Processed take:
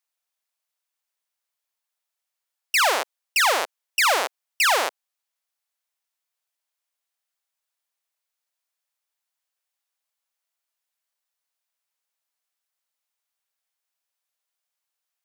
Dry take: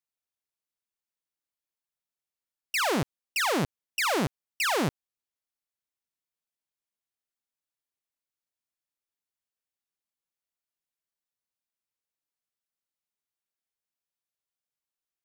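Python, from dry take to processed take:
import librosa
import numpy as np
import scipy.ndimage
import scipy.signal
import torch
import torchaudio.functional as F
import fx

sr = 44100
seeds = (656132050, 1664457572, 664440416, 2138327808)

y = scipy.signal.sosfilt(scipy.signal.butter(4, 560.0, 'highpass', fs=sr, output='sos'), x)
y = y * librosa.db_to_amplitude(8.0)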